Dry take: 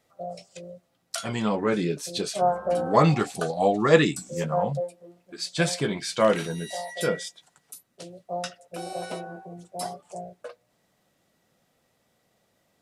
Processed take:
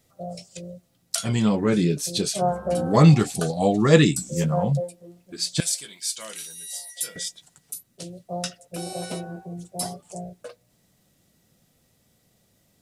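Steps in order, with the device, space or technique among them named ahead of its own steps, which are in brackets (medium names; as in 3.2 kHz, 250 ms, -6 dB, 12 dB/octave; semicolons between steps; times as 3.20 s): smiley-face EQ (bass shelf 190 Hz +7.5 dB; peaking EQ 1 kHz -8 dB 2.9 oct; treble shelf 5.6 kHz +5 dB); 5.60–7.16 s: differentiator; trim +5 dB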